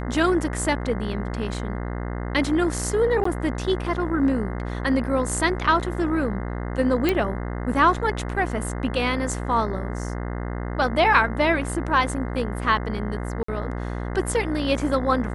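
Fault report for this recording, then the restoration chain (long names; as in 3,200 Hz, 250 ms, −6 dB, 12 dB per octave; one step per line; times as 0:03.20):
mains buzz 60 Hz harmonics 35 −29 dBFS
0:03.24–0:03.25: drop-out 14 ms
0:07.09: click
0:13.43–0:13.48: drop-out 54 ms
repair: click removal
hum removal 60 Hz, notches 35
repair the gap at 0:03.24, 14 ms
repair the gap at 0:13.43, 54 ms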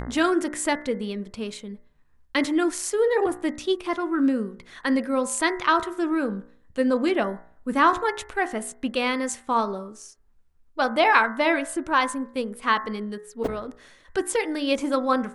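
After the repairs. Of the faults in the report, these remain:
none of them is left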